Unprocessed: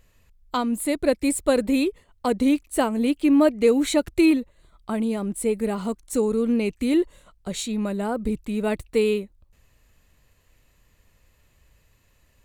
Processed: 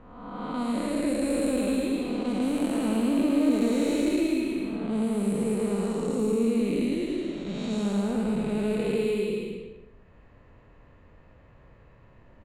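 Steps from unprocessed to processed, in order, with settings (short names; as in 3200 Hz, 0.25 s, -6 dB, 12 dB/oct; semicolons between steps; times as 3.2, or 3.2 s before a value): time blur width 0.486 s; low-pass opened by the level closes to 1200 Hz, open at -24.5 dBFS; on a send: bouncing-ball echo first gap 0.11 s, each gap 0.75×, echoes 5; on the sum: three-band squash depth 40%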